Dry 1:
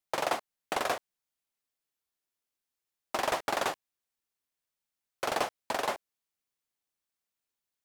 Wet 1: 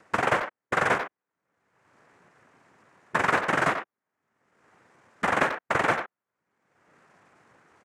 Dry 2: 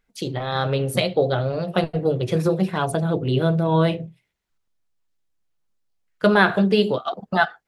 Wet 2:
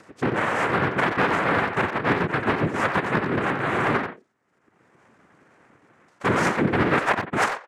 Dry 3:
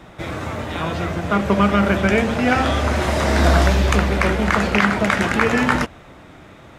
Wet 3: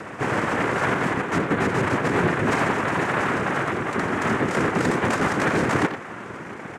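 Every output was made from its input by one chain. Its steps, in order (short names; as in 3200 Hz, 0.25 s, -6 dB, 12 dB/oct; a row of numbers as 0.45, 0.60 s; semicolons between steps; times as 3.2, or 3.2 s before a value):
LPF 1300 Hz 24 dB/oct; reverse; compressor 20:1, threshold -26 dBFS; reverse; brick-wall FIR high-pass 180 Hz; noise vocoder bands 3; in parallel at -3.5 dB: overloaded stage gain 27.5 dB; on the sum: upward compressor, threshold -40 dBFS; speakerphone echo 90 ms, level -7 dB; normalise peaks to -9 dBFS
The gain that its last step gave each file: +5.0, +5.5, +5.0 dB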